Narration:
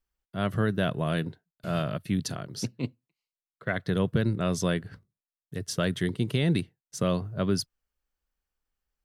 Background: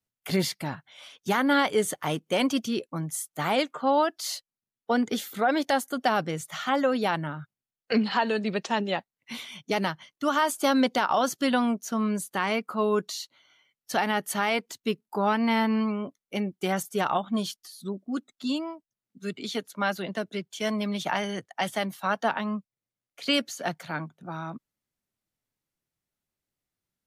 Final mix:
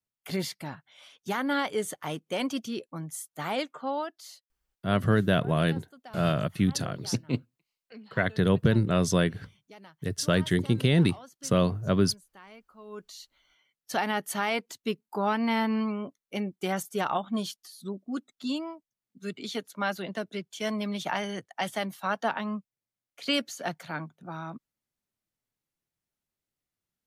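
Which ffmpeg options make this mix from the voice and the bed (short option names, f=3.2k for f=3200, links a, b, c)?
-filter_complex "[0:a]adelay=4500,volume=3dB[a];[1:a]volume=15.5dB,afade=t=out:st=3.64:d=0.86:silence=0.125893,afade=t=in:st=12.84:d=0.97:silence=0.0891251[b];[a][b]amix=inputs=2:normalize=0"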